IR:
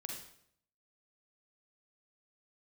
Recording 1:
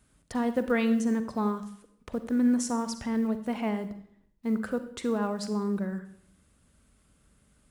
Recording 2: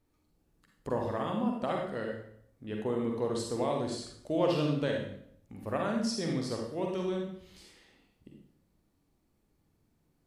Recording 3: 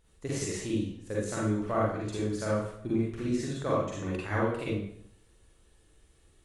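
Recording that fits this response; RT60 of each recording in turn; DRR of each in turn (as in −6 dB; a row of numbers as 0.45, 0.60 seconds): 2; 0.70, 0.70, 0.70 seconds; 9.5, 0.0, −7.0 decibels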